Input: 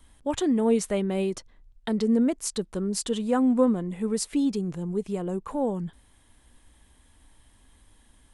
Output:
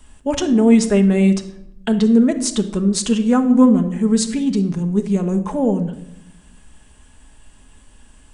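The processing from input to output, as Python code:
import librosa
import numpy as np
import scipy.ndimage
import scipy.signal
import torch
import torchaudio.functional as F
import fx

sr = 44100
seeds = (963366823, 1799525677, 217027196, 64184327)

y = fx.formant_shift(x, sr, semitones=-2)
y = fx.room_shoebox(y, sr, seeds[0], volume_m3=2400.0, walls='furnished', distance_m=1.4)
y = y * librosa.db_to_amplitude(8.0)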